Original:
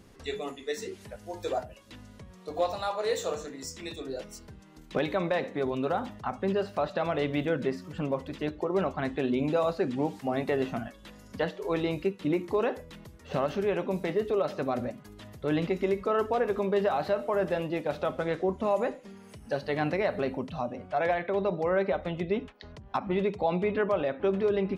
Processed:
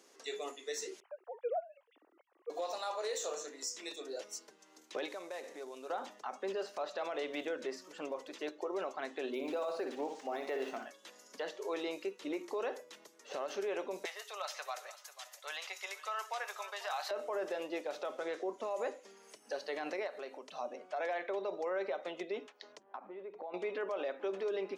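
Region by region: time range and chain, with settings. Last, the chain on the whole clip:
0:01.00–0:02.50: three sine waves on the formant tracks + spectral tilt −3 dB per octave
0:05.08–0:05.90: variable-slope delta modulation 64 kbit/s + downward compressor 3 to 1, threshold −38 dBFS
0:09.32–0:10.87: flutter between parallel walls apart 10.3 metres, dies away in 0.4 s + linearly interpolated sample-rate reduction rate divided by 3×
0:14.05–0:17.11: high-pass filter 730 Hz 24 dB per octave + spectral tilt +2.5 dB per octave + single-tap delay 490 ms −15.5 dB
0:20.07–0:20.52: parametric band 120 Hz −9.5 dB 2.4 octaves + downward compressor 2 to 1, threshold −39 dBFS
0:22.83–0:23.54: low-pass filter 1,600 Hz + downward compressor 5 to 1, threshold −36 dBFS
whole clip: high-pass filter 350 Hz 24 dB per octave; parametric band 6,300 Hz +9.5 dB 0.82 octaves; brickwall limiter −24 dBFS; level −5 dB

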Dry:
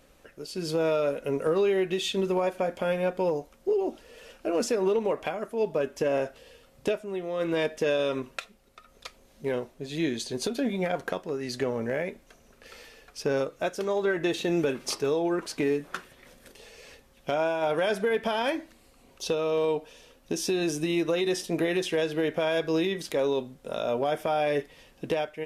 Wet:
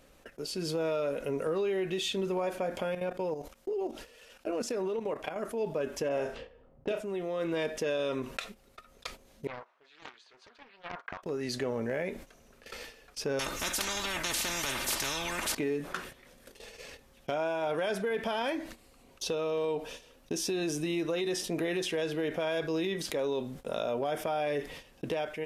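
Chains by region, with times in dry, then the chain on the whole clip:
0:02.83–0:05.36: output level in coarse steps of 14 dB + one half of a high-frequency compander encoder only
0:06.09–0:07.00: low-pass that shuts in the quiet parts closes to 620 Hz, open at −25.5 dBFS + flutter between parallel walls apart 5.9 metres, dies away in 0.21 s
0:09.47–0:11.23: four-pole ladder band-pass 1,400 Hz, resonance 40% + highs frequency-modulated by the lows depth 0.51 ms
0:13.39–0:15.55: comb filter 3.3 ms, depth 72% + every bin compressed towards the loudest bin 10 to 1
whole clip: noise gate −47 dBFS, range −25 dB; envelope flattener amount 50%; level −7 dB

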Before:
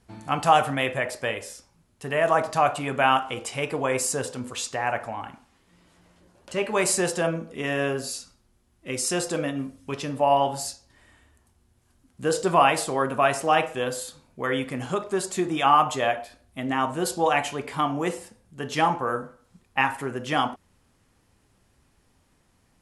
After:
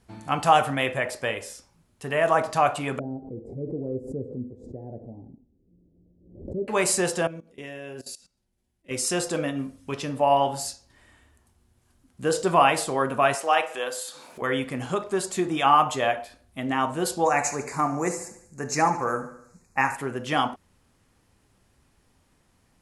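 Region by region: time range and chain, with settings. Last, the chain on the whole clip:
0:02.99–0:06.68: inverse Chebyshev low-pass filter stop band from 1,100 Hz, stop band 50 dB + background raised ahead of every attack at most 86 dB per second
0:07.27–0:08.91: parametric band 1,200 Hz −9 dB 0.43 octaves + tuned comb filter 190 Hz, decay 0.18 s, mix 50% + output level in coarse steps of 19 dB
0:13.35–0:14.42: high-pass filter 500 Hz + upward compression, threshold −30 dBFS
0:17.25–0:19.96: Butterworth band-reject 3,200 Hz, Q 1.7 + parametric band 6,800 Hz +12.5 dB 0.56 octaves + repeating echo 73 ms, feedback 54%, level −14 dB
whole clip: no processing

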